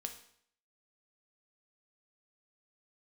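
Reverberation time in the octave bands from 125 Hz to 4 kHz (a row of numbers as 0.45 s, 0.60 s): 0.65 s, 0.65 s, 0.65 s, 0.65 s, 0.65 s, 0.60 s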